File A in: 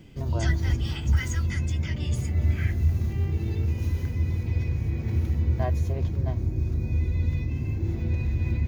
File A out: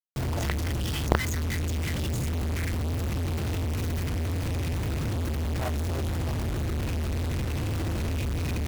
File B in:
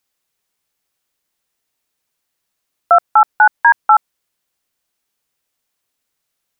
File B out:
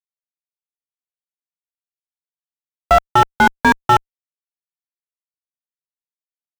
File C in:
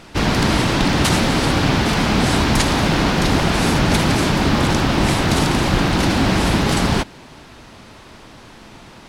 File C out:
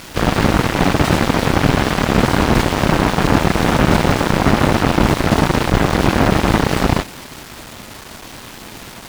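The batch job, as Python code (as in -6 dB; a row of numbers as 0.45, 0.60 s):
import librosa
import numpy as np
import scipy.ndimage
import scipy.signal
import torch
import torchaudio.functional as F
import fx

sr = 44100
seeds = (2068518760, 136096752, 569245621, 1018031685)

y = fx.quant_companded(x, sr, bits=2)
y = fx.cheby_harmonics(y, sr, harmonics=(2,), levels_db=(-33,), full_scale_db=0.0)
y = fx.slew_limit(y, sr, full_power_hz=560.0)
y = y * librosa.db_to_amplitude(-2.5)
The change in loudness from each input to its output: -2.5, -3.0, +1.5 LU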